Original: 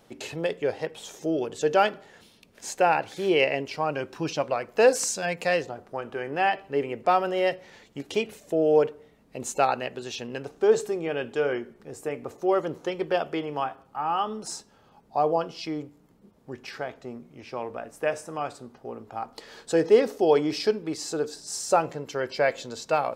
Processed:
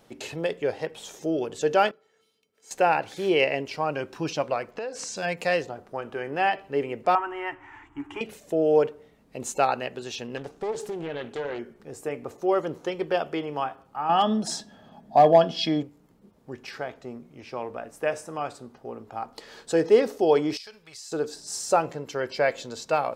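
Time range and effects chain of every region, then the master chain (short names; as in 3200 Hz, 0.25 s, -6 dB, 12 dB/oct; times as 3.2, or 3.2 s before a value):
1.91–2.71 HPF 190 Hz 6 dB/oct + resonator 440 Hz, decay 0.18 s, harmonics odd, mix 90%
4.71–5.17 LPF 5400 Hz + compressor, threshold -31 dBFS
7.15–8.21 G.711 law mismatch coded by mu + EQ curve 120 Hz 0 dB, 190 Hz -28 dB, 300 Hz +5 dB, 520 Hz -26 dB, 890 Hz +6 dB, 2000 Hz -2 dB, 2900 Hz -8 dB, 4200 Hz -29 dB, 7800 Hz -16 dB, 12000 Hz -24 dB
10.37–11.59 compressor 2.5:1, threshold -30 dBFS + Doppler distortion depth 0.34 ms
14.09–15.83 dynamic EQ 3900 Hz, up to +8 dB, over -51 dBFS, Q 1.1 + overloaded stage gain 16.5 dB + small resonant body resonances 210/650/1700/3300 Hz, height 13 dB, ringing for 25 ms
20.57–21.12 passive tone stack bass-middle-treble 10-0-10 + compressor 10:1, threshold -38 dBFS
whole clip: dry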